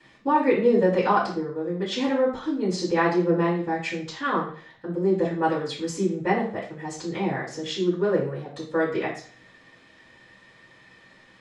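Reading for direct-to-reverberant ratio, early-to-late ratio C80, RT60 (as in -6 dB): -13.5 dB, 10.5 dB, 0.50 s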